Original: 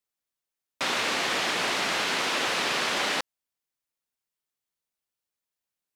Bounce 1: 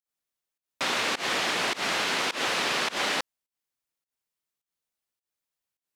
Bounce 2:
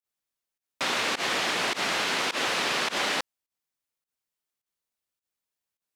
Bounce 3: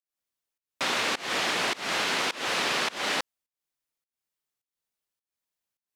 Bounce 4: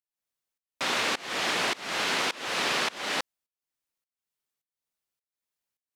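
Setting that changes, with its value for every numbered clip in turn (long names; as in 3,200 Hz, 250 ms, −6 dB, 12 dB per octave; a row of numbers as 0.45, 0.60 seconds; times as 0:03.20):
fake sidechain pumping, release: 147, 94, 272, 415 milliseconds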